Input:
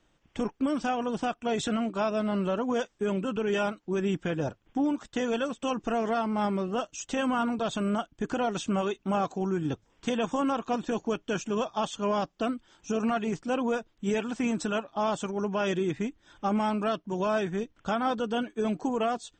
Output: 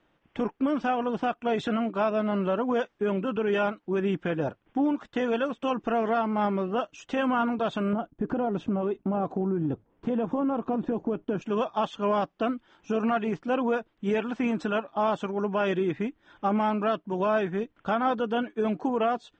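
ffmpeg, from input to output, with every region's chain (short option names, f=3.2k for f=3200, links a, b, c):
-filter_complex "[0:a]asettb=1/sr,asplit=3[a][b][c];[a]atrim=end=7.934[d];[b]atrim=start=7.93:end=11.42,asetpts=PTS-STARTPTS,afade=t=in:d=0.004:c=qsin,afade=t=out:st=3.486:d=0.004:c=qsin,agate=range=-7dB:threshold=-57dB:ratio=16:release=100:detection=peak,tiltshelf=f=1.1k:g=9.5,acompressor=threshold=-25dB:ratio=6:attack=3.2:release=140:knee=1:detection=peak[e];[c]atrim=start=11.416[f];[d][e]acrossfade=d=0.004:c1=hsin:c2=qsin[g];[g][f]acrossfade=d=0.004:c1=qsin:c2=hsin,lowpass=2.7k,lowshelf=f=98:g=-11.5,volume=3dB"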